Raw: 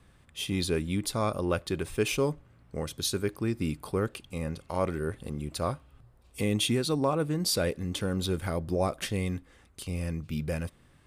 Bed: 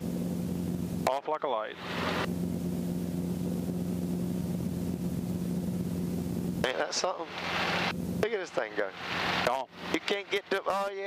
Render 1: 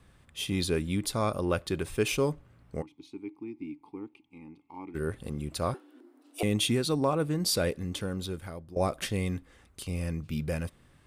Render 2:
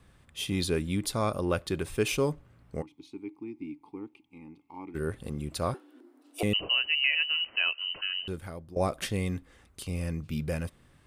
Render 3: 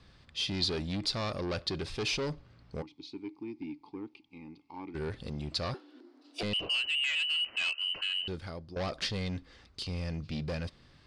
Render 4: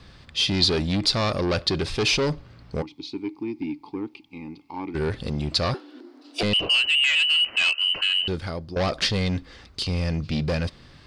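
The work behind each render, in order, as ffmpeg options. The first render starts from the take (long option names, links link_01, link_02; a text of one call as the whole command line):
ffmpeg -i in.wav -filter_complex "[0:a]asplit=3[link_01][link_02][link_03];[link_01]afade=type=out:start_time=2.81:duration=0.02[link_04];[link_02]asplit=3[link_05][link_06][link_07];[link_05]bandpass=frequency=300:width_type=q:width=8,volume=0dB[link_08];[link_06]bandpass=frequency=870:width_type=q:width=8,volume=-6dB[link_09];[link_07]bandpass=frequency=2240:width_type=q:width=8,volume=-9dB[link_10];[link_08][link_09][link_10]amix=inputs=3:normalize=0,afade=type=in:start_time=2.81:duration=0.02,afade=type=out:start_time=4.94:duration=0.02[link_11];[link_03]afade=type=in:start_time=4.94:duration=0.02[link_12];[link_04][link_11][link_12]amix=inputs=3:normalize=0,asettb=1/sr,asplit=3[link_13][link_14][link_15];[link_13]atrim=end=5.744[link_16];[link_14]atrim=start=5.74:end=6.43,asetpts=PTS-STARTPTS,afade=type=in:duration=0.004:curve=qsin,afade=type=out:start_time=0.686:duration=0.004:curve=qsin,afreqshift=230[link_17];[link_15]atrim=start=6.426[link_18];[link_16][link_17]acrossfade=duration=0.004:curve1=hsin:curve2=qsin[link_19];[link_19][link_18]acrossfade=duration=0.004:curve1=qsin:curve2=hsin,asplit=2[link_20][link_21];[link_20]atrim=end=8.76,asetpts=PTS-STARTPTS,afade=type=out:start_time=7.67:duration=1.09:silence=0.141254[link_22];[link_21]atrim=start=8.76,asetpts=PTS-STARTPTS,afade=type=in:duration=0.004:curve=hsin:silence=0.141254[link_23];[link_22][link_23]concat=n=2:v=0:a=1" out.wav
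ffmpeg -i in.wav -filter_complex "[0:a]asettb=1/sr,asplit=3[link_01][link_02][link_03];[link_01]atrim=end=6.534[link_04];[link_02]atrim=start=6.53:end=8.28,asetpts=PTS-STARTPTS,afade=type=in:duration=0.004:curve=qsin,afade=type=out:start_time=1.746:duration=0.004:curve=qsin,lowpass=frequency=2600:width_type=q:width=0.5098,lowpass=frequency=2600:width_type=q:width=0.6013,lowpass=frequency=2600:width_type=q:width=0.9,lowpass=frequency=2600:width_type=q:width=2.563,afreqshift=-3100[link_05];[link_03]atrim=start=8.276[link_06];[link_04][link_05]acrossfade=duration=0.004:curve1=hsin:curve2=qsin[link_07];[link_07][link_06]acrossfade=duration=0.004:curve1=qsin:curve2=hsin" out.wav
ffmpeg -i in.wav -af "asoftclip=type=tanh:threshold=-30.5dB,lowpass=frequency=4700:width_type=q:width=3.8" out.wav
ffmpeg -i in.wav -af "volume=10.5dB" out.wav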